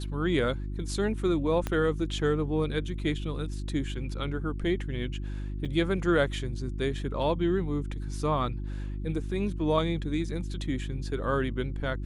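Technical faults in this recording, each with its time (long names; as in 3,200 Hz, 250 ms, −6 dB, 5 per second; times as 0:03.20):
mains hum 50 Hz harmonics 7 −34 dBFS
0:01.67: click −16 dBFS
0:05.65–0:05.66: drop-out 5.8 ms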